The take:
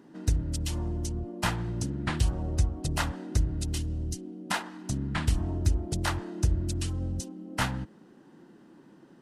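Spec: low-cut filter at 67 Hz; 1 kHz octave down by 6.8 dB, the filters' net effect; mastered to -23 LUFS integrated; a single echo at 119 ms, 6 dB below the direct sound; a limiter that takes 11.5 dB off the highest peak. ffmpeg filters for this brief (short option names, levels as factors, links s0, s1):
-af "highpass=67,equalizer=f=1000:t=o:g=-9,alimiter=level_in=1.26:limit=0.0631:level=0:latency=1,volume=0.794,aecho=1:1:119:0.501,volume=4.22"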